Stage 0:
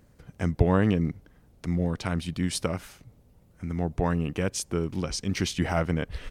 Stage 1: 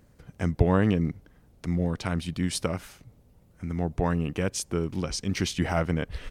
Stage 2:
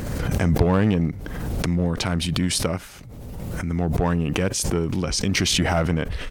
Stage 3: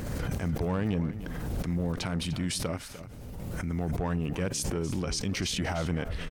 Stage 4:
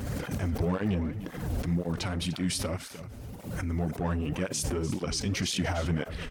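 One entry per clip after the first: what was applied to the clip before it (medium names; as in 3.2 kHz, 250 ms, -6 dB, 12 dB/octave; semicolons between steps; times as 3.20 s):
no audible change
in parallel at -7.5 dB: wavefolder -19.5 dBFS; on the sum: swell ahead of each attack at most 25 dB/s; trim +1.5 dB
peak limiter -16 dBFS, peak gain reduction 11.5 dB; delay 299 ms -13.5 dB; trim -6 dB
on a send at -19 dB: reverberation, pre-delay 3 ms; on the sum: cancelling through-zero flanger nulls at 1.9 Hz, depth 6.9 ms; trim +3.5 dB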